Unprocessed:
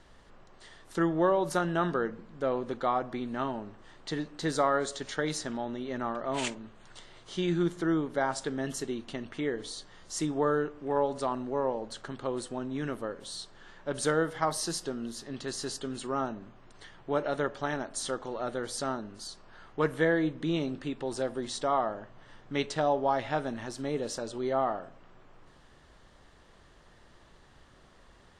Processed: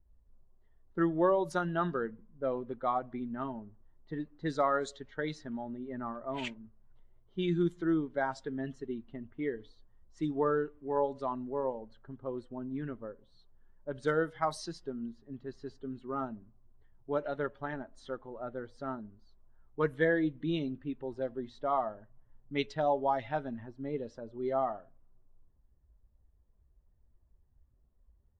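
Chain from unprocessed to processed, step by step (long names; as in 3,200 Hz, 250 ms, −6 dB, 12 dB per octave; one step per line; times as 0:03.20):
spectral dynamics exaggerated over time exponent 1.5
low-pass that shuts in the quiet parts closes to 620 Hz, open at −25.5 dBFS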